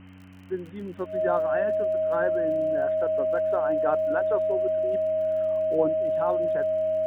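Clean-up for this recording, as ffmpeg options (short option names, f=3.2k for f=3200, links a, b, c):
-af "adeclick=t=4,bandreject=f=93.2:t=h:w=4,bandreject=f=186.4:t=h:w=4,bandreject=f=279.6:t=h:w=4,bandreject=f=630:w=30,afwtdn=0.0032"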